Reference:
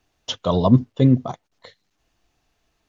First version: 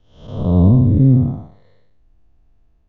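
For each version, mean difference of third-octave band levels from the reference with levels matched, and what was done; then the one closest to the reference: 7.5 dB: time blur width 0.283 s; tilt -4.5 dB/oct; gain -1.5 dB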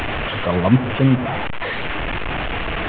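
9.5 dB: delta modulation 16 kbps, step -16.5 dBFS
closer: first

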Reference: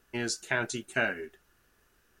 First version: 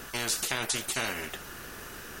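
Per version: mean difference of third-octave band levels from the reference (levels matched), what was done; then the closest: 13.0 dB: spectral compressor 4:1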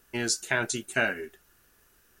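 2.0 dB: high shelf 6800 Hz +9.5 dB; gain +2 dB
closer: second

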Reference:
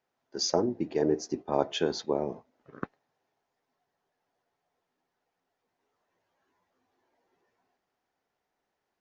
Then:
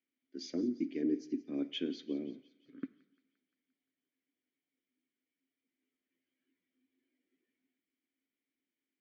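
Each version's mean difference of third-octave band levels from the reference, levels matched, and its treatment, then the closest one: 7.0 dB: vowel filter i; on a send: thin delay 0.174 s, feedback 58%, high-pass 1600 Hz, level -18 dB; on the sum: two-slope reverb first 0.66 s, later 2 s, from -17 dB, DRR 16 dB; gain +4.5 dB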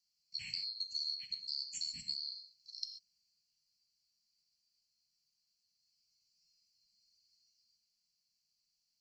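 21.0 dB: band-swap scrambler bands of 4000 Hz; compressor 10:1, threshold -36 dBFS, peak gain reduction 17.5 dB; elliptic band-stop 210–2500 Hz, stop band 40 dB; non-linear reverb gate 0.16 s flat, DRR 6 dB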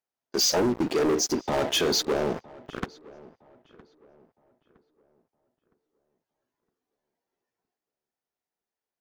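10.0 dB: high shelf 4700 Hz +11 dB; sample leveller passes 5; limiter -15.5 dBFS, peak gain reduction 5 dB; darkening echo 0.963 s, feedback 34%, low-pass 2300 Hz, level -21.5 dB; gain -4 dB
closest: first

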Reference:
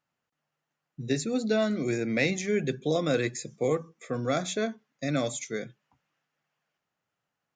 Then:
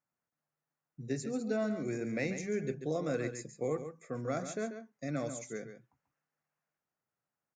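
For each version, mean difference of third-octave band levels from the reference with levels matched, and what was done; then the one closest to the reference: 4.0 dB: bell 3400 Hz -13.5 dB 0.69 oct; echo 0.139 s -9.5 dB; gain -7.5 dB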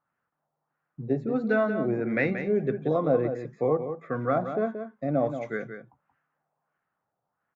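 8.0 dB: LFO low-pass sine 1.5 Hz 760–1600 Hz; on a send: echo 0.179 s -9 dB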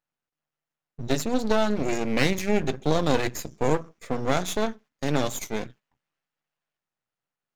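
6.0 dB: gate -52 dBFS, range -10 dB; half-wave rectifier; gain +7 dB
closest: first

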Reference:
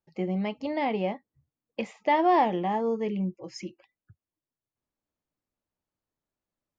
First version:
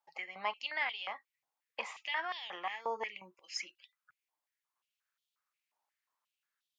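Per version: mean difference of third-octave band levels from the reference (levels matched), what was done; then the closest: 10.0 dB: limiter -19 dBFS, peak gain reduction 5.5 dB; compressor 2.5:1, threshold -30 dBFS, peak gain reduction 5.5 dB; stepped high-pass 5.6 Hz 850–3400 Hz; gain +1 dB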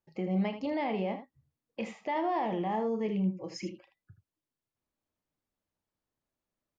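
3.5 dB: high shelf 6600 Hz -5 dB; limiter -25 dBFS, peak gain reduction 11.5 dB; on a send: early reflections 32 ms -12 dB, 79 ms -10.5 dB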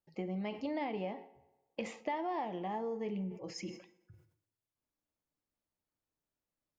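4.5 dB: compressor 6:1, threshold -31 dBFS, peak gain reduction 12.5 dB; FDN reverb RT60 1.1 s, low-frequency decay 0.8×, high-frequency decay 0.7×, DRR 12.5 dB; sustainer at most 110 dB/s; gain -4 dB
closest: second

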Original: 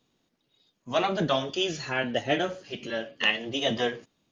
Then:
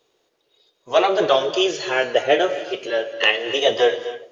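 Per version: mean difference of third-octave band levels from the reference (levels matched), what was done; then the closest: 5.5 dB: resonant low shelf 310 Hz -10.5 dB, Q 3; on a send: tape echo 0.281 s, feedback 55%, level -22.5 dB, low-pass 1900 Hz; on the sum: non-linear reverb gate 0.3 s rising, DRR 11.5 dB; gain +6.5 dB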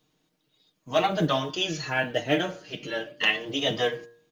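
3.0 dB: comb 6.5 ms, depth 64%; de-hum 117.8 Hz, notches 16; companded quantiser 8-bit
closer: second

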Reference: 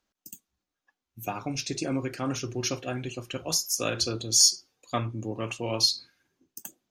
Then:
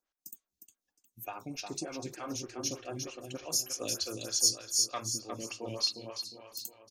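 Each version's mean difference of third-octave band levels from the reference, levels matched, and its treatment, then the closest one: 8.0 dB: tone controls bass -2 dB, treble +6 dB; on a send: feedback echo 0.358 s, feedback 46%, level -5.5 dB; on the sum: photocell phaser 3.3 Hz; gain -6.5 dB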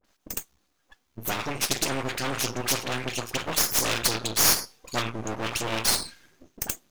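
13.0 dB: dispersion highs, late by 46 ms, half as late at 910 Hz; half-wave rectifier; spectral compressor 2:1; gain +2 dB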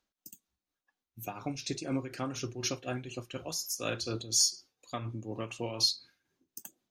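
2.0 dB: bell 3900 Hz +2.5 dB 0.25 oct; in parallel at -1 dB: limiter -19 dBFS, peak gain reduction 10.5 dB; on the sum: tremolo 4.1 Hz, depth 58%; gain -8 dB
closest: third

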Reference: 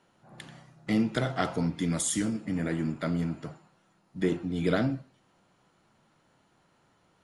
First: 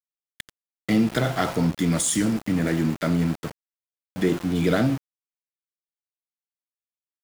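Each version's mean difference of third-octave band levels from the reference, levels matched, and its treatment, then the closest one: 6.0 dB: in parallel at +0.5 dB: limiter -22.5 dBFS, peak gain reduction 10.5 dB; on the sum: sample gate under -32.5 dBFS; gain +1.5 dB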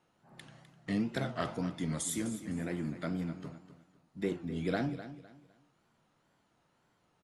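3.0 dB: wow and flutter 120 cents; feedback echo 0.254 s, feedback 28%, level -13 dB; gain -6.5 dB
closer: second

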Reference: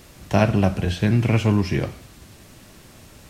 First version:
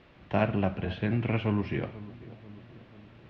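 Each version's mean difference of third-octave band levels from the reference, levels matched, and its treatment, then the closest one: 6.0 dB: LPF 3200 Hz 24 dB/oct; low shelf 110 Hz -8 dB; darkening echo 0.488 s, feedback 60%, low-pass 930 Hz, level -16.5 dB; gain -7 dB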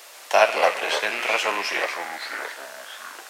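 14.0 dB: rattling part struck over -27 dBFS, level -24 dBFS; echoes that change speed 0.136 s, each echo -4 st, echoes 2, each echo -6 dB; HPF 590 Hz 24 dB/oct; gain +6 dB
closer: first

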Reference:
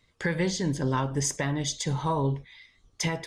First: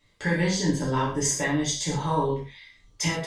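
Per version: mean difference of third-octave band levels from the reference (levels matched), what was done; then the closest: 4.5 dB: non-linear reverb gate 0.16 s falling, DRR -6 dB; gain -3.5 dB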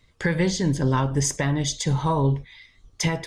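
1.0 dB: low shelf 110 Hz +7.5 dB; gain +3.5 dB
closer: second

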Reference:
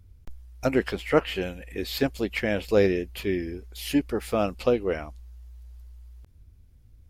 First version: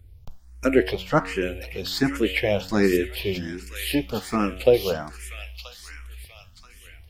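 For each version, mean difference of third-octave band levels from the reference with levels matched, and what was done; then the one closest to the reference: 5.5 dB: de-hum 92.93 Hz, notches 40; on a send: thin delay 0.982 s, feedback 41%, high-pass 2500 Hz, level -3 dB; on the sum: endless phaser +1.3 Hz; gain +6.5 dB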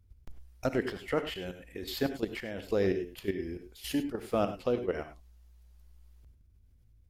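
4.0 dB: dynamic EQ 2400 Hz, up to -6 dB, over -50 dBFS, Q 6.3; level quantiser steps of 12 dB; non-linear reverb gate 0.12 s rising, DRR 9.5 dB; gain -2.5 dB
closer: second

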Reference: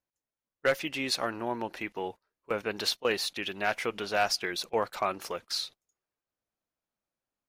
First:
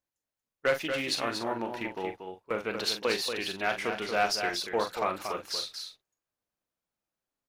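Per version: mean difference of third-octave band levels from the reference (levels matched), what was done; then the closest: 5.0 dB: doubler 43 ms -8 dB; echo 0.234 s -7 dB; Doppler distortion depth 0.1 ms; gain -1 dB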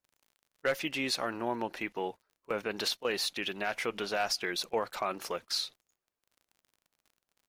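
2.0 dB: bell 94 Hz -12 dB 0.24 oct; limiter -20 dBFS, peak gain reduction 6 dB; crackle 44/s -51 dBFS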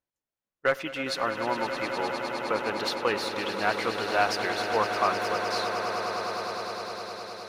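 9.0 dB: high shelf 4800 Hz -7.5 dB; swelling echo 0.103 s, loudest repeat 8, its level -11.5 dB; dynamic EQ 1100 Hz, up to +7 dB, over -44 dBFS, Q 1.6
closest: second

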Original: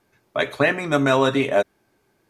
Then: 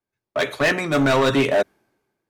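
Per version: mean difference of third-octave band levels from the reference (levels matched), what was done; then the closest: 3.5 dB: in parallel at -2 dB: limiter -13.5 dBFS, peak gain reduction 8.5 dB; on the sum: hard clip -14 dBFS, distortion -10 dB; three-band expander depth 70%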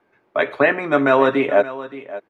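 5.0 dB: three-band isolator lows -13 dB, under 230 Hz, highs -22 dB, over 2800 Hz; on a send: echo 0.572 s -15.5 dB; on the sum: gain +4 dB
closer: first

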